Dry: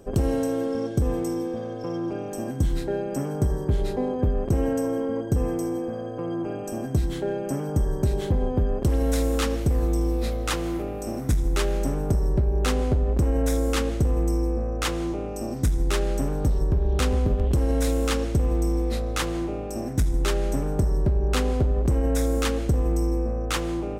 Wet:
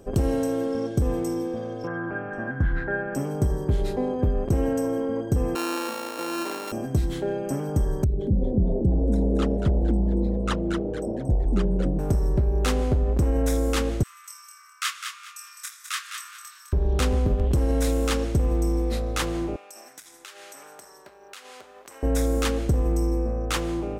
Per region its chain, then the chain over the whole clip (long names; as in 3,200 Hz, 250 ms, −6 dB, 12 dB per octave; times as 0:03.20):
0:01.87–0:03.15: low-pass with resonance 1,600 Hz, resonance Q 7.7 + parametric band 370 Hz −5 dB 1.1 octaves
0:05.55–0:06.72: samples sorted by size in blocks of 32 samples + high-pass filter 250 Hz 24 dB per octave
0:08.04–0:11.99: spectral envelope exaggerated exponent 2 + echo with shifted repeats 230 ms, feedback 36%, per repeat +140 Hz, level −6.5 dB
0:14.03–0:16.73: Butterworth high-pass 1,100 Hz 96 dB per octave + double-tracking delay 25 ms −4 dB + repeating echo 207 ms, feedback 26%, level −7 dB
0:19.56–0:22.03: high-pass filter 1,300 Hz + downward compressor 8 to 1, threshold −39 dBFS
whole clip: no processing